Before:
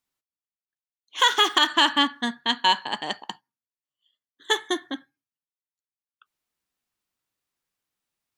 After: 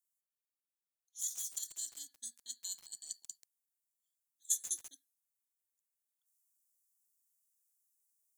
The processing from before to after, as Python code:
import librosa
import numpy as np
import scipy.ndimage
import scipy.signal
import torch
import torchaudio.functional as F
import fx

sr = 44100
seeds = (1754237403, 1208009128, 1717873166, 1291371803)

y = fx.rider(x, sr, range_db=4, speed_s=0.5)
y = scipy.signal.sosfilt(scipy.signal.cheby2(4, 50, 2900.0, 'highpass', fs=sr, output='sos'), y)
y = fx.echo_crushed(y, sr, ms=136, feedback_pct=35, bits=7, wet_db=-11.0)
y = F.gain(torch.from_numpy(y), 4.5).numpy()